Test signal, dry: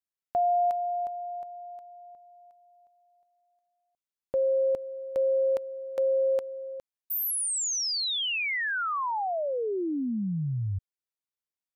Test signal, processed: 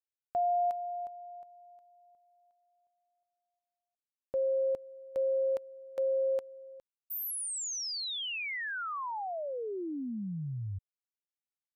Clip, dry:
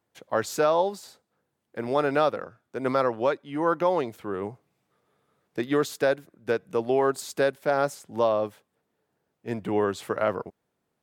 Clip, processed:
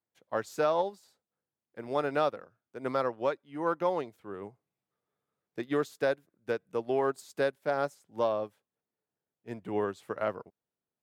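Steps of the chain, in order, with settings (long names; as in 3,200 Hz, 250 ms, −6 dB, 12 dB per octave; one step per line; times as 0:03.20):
in parallel at −11.5 dB: asymmetric clip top −18 dBFS, bottom −13 dBFS
on the sum: expander for the loud parts 1.5 to 1, over −41 dBFS
level −6.5 dB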